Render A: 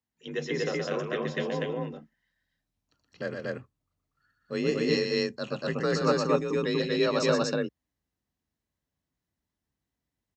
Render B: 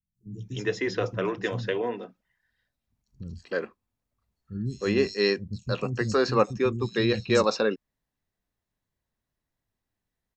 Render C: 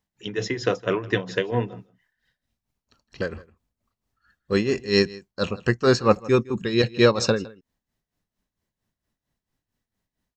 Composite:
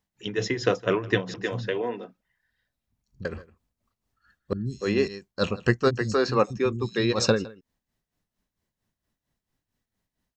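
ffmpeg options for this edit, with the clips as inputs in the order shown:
-filter_complex "[1:a]asplit=3[a][b][c];[2:a]asplit=4[d][e][f][g];[d]atrim=end=1.342[h];[a]atrim=start=1.338:end=3.252[i];[e]atrim=start=3.248:end=4.532[j];[b]atrim=start=4.528:end=5.082[k];[f]atrim=start=5.078:end=5.91[l];[c]atrim=start=5.87:end=7.15[m];[g]atrim=start=7.11[n];[h][i]acrossfade=d=0.004:c1=hsin:c2=hsin[o];[o][j]acrossfade=d=0.004:c1=hsin:c2=hsin[p];[p][k]acrossfade=d=0.004:c1=hsin:c2=hsin[q];[q][l]acrossfade=d=0.004:c1=hsin:c2=hsin[r];[r][m]acrossfade=d=0.04:c1=tri:c2=tri[s];[s][n]acrossfade=d=0.04:c1=tri:c2=tri"

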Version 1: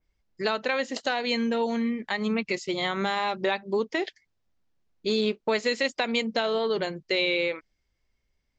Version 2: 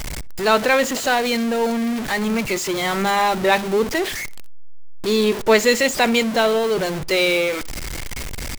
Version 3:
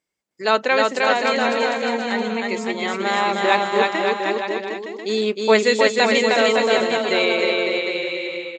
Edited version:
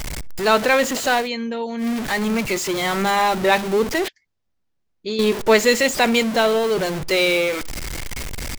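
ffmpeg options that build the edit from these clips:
-filter_complex "[0:a]asplit=2[a][b];[1:a]asplit=3[c][d][e];[c]atrim=end=1.29[f];[a]atrim=start=1.19:end=1.87[g];[d]atrim=start=1.77:end=4.082[h];[b]atrim=start=4.078:end=5.192[i];[e]atrim=start=5.188[j];[f][g]acrossfade=d=0.1:c1=tri:c2=tri[k];[k][h]acrossfade=d=0.1:c1=tri:c2=tri[l];[l][i]acrossfade=d=0.004:c1=hsin:c2=hsin[m];[m][j]acrossfade=d=0.004:c1=hsin:c2=hsin"

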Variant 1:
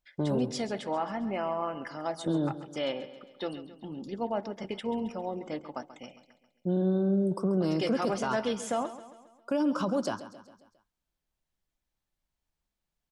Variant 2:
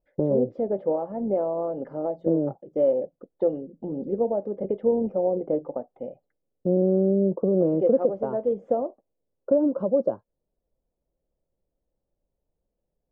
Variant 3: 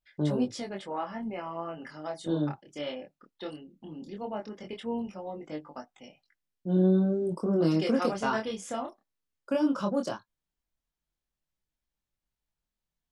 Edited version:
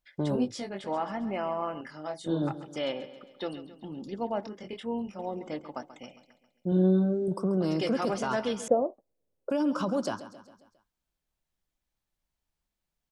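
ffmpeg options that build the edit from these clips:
-filter_complex "[2:a]asplit=4[a][b][c][d];[0:a]asplit=6[e][f][g][h][i][j];[e]atrim=end=0.362[k];[a]atrim=start=0.358:end=0.842[l];[f]atrim=start=0.838:end=1.812[m];[b]atrim=start=1.808:end=2.422[n];[g]atrim=start=2.418:end=4.472[o];[c]atrim=start=4.468:end=5.192[p];[h]atrim=start=5.188:end=6.722[q];[d]atrim=start=6.718:end=7.282[r];[i]atrim=start=7.278:end=8.682[s];[1:a]atrim=start=8.678:end=9.502[t];[j]atrim=start=9.498[u];[k][l]acrossfade=d=0.004:c1=hsin:c2=hsin[v];[v][m]acrossfade=d=0.004:c1=hsin:c2=hsin[w];[w][n]acrossfade=d=0.004:c1=hsin:c2=hsin[x];[x][o]acrossfade=d=0.004:c1=hsin:c2=hsin[y];[y][p]acrossfade=d=0.004:c1=hsin:c2=hsin[z];[z][q]acrossfade=d=0.004:c1=hsin:c2=hsin[aa];[aa][r]acrossfade=d=0.004:c1=hsin:c2=hsin[ab];[ab][s]acrossfade=d=0.004:c1=hsin:c2=hsin[ac];[ac][t]acrossfade=d=0.004:c1=hsin:c2=hsin[ad];[ad][u]acrossfade=d=0.004:c1=hsin:c2=hsin"

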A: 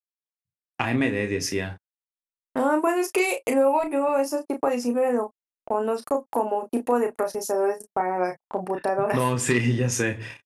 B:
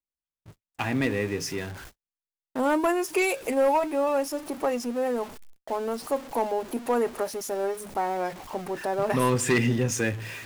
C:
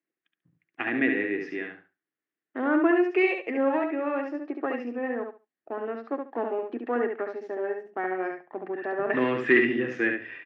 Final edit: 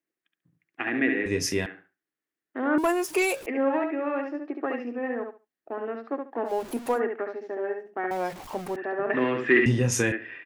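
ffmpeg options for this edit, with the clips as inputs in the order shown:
-filter_complex "[0:a]asplit=2[a][b];[1:a]asplit=3[c][d][e];[2:a]asplit=6[f][g][h][i][j][k];[f]atrim=end=1.262[l];[a]atrim=start=1.258:end=1.662[m];[g]atrim=start=1.658:end=2.782[n];[c]atrim=start=2.778:end=3.462[o];[h]atrim=start=3.458:end=6.54[p];[d]atrim=start=6.44:end=7.01[q];[i]atrim=start=6.91:end=8.112[r];[e]atrim=start=8.108:end=8.762[s];[j]atrim=start=8.758:end=9.662[t];[b]atrim=start=9.658:end=10.122[u];[k]atrim=start=10.118[v];[l][m]acrossfade=d=0.004:c1=hsin:c2=hsin[w];[w][n]acrossfade=d=0.004:c1=hsin:c2=hsin[x];[x][o]acrossfade=d=0.004:c1=hsin:c2=hsin[y];[y][p]acrossfade=d=0.004:c1=hsin:c2=hsin[z];[z][q]acrossfade=d=0.1:c1=tri:c2=tri[aa];[aa][r]acrossfade=d=0.1:c1=tri:c2=tri[ab];[ab][s]acrossfade=d=0.004:c1=hsin:c2=hsin[ac];[ac][t]acrossfade=d=0.004:c1=hsin:c2=hsin[ad];[ad][u]acrossfade=d=0.004:c1=hsin:c2=hsin[ae];[ae][v]acrossfade=d=0.004:c1=hsin:c2=hsin"

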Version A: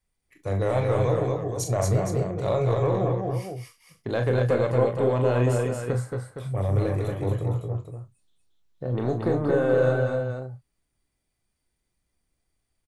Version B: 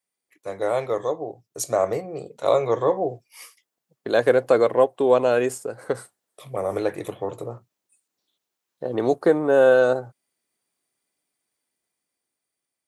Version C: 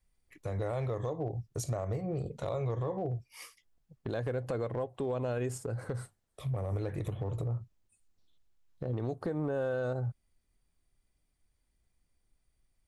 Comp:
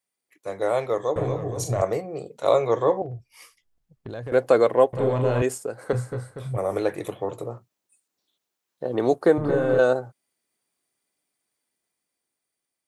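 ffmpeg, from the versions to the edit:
-filter_complex "[0:a]asplit=4[a][b][c][d];[1:a]asplit=6[e][f][g][h][i][j];[e]atrim=end=1.162[k];[a]atrim=start=1.158:end=1.822[l];[f]atrim=start=1.818:end=3.022[m];[2:a]atrim=start=3.018:end=4.322[n];[g]atrim=start=4.318:end=4.932[o];[b]atrim=start=4.928:end=5.422[p];[h]atrim=start=5.418:end=5.932[q];[c]atrim=start=5.928:end=6.582[r];[i]atrim=start=6.578:end=9.382[s];[d]atrim=start=9.378:end=9.792[t];[j]atrim=start=9.788[u];[k][l]acrossfade=d=0.004:c1=hsin:c2=hsin[v];[v][m]acrossfade=d=0.004:c1=hsin:c2=hsin[w];[w][n]acrossfade=d=0.004:c1=hsin:c2=hsin[x];[x][o]acrossfade=d=0.004:c1=hsin:c2=hsin[y];[y][p]acrossfade=d=0.004:c1=hsin:c2=hsin[z];[z][q]acrossfade=d=0.004:c1=hsin:c2=hsin[aa];[aa][r]acrossfade=d=0.004:c1=hsin:c2=hsin[ab];[ab][s]acrossfade=d=0.004:c1=hsin:c2=hsin[ac];[ac][t]acrossfade=d=0.004:c1=hsin:c2=hsin[ad];[ad][u]acrossfade=d=0.004:c1=hsin:c2=hsin"

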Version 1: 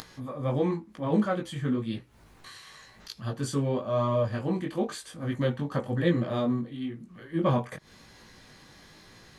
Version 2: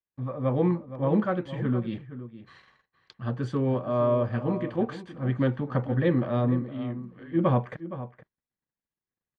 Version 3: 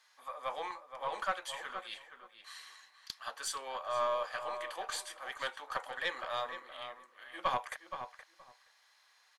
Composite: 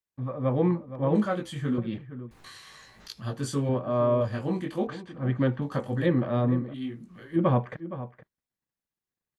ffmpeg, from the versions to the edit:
-filter_complex "[0:a]asplit=5[a][b][c][d][e];[1:a]asplit=6[f][g][h][i][j][k];[f]atrim=end=1.152[l];[a]atrim=start=1.148:end=1.782[m];[g]atrim=start=1.778:end=2.312[n];[b]atrim=start=2.308:end=3.692[o];[h]atrim=start=3.688:end=4.212[p];[c]atrim=start=4.208:end=4.872[q];[i]atrim=start=4.868:end=5.622[r];[d]atrim=start=5.618:end=6.062[s];[j]atrim=start=6.058:end=6.742[t];[e]atrim=start=6.738:end=7.362[u];[k]atrim=start=7.358[v];[l][m]acrossfade=d=0.004:c1=hsin:c2=hsin[w];[w][n]acrossfade=d=0.004:c1=hsin:c2=hsin[x];[x][o]acrossfade=d=0.004:c1=hsin:c2=hsin[y];[y][p]acrossfade=d=0.004:c1=hsin:c2=hsin[z];[z][q]acrossfade=d=0.004:c1=hsin:c2=hsin[aa];[aa][r]acrossfade=d=0.004:c1=hsin:c2=hsin[ab];[ab][s]acrossfade=d=0.004:c1=hsin:c2=hsin[ac];[ac][t]acrossfade=d=0.004:c1=hsin:c2=hsin[ad];[ad][u]acrossfade=d=0.004:c1=hsin:c2=hsin[ae];[ae][v]acrossfade=d=0.004:c1=hsin:c2=hsin"

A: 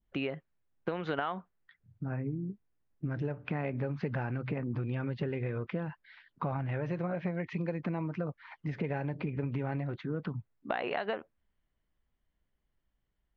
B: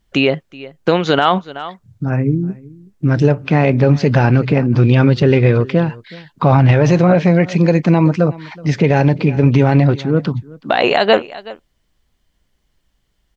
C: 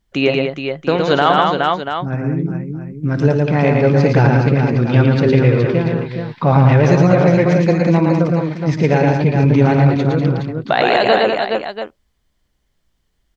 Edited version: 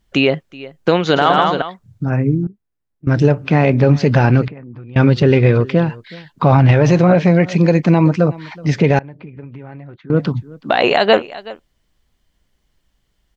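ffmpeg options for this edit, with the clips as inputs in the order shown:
-filter_complex "[0:a]asplit=3[a][b][c];[1:a]asplit=5[d][e][f][g][h];[d]atrim=end=1.162[i];[2:a]atrim=start=1.158:end=1.622[j];[e]atrim=start=1.618:end=2.472[k];[a]atrim=start=2.468:end=3.072[l];[f]atrim=start=3.068:end=4.482[m];[b]atrim=start=4.478:end=4.962[n];[g]atrim=start=4.958:end=8.992[o];[c]atrim=start=8.988:end=10.102[p];[h]atrim=start=10.098[q];[i][j]acrossfade=d=0.004:c1=hsin:c2=hsin[r];[r][k]acrossfade=d=0.004:c1=hsin:c2=hsin[s];[s][l]acrossfade=d=0.004:c1=hsin:c2=hsin[t];[t][m]acrossfade=d=0.004:c1=hsin:c2=hsin[u];[u][n]acrossfade=d=0.004:c1=hsin:c2=hsin[v];[v][o]acrossfade=d=0.004:c1=hsin:c2=hsin[w];[w][p]acrossfade=d=0.004:c1=hsin:c2=hsin[x];[x][q]acrossfade=d=0.004:c1=hsin:c2=hsin"

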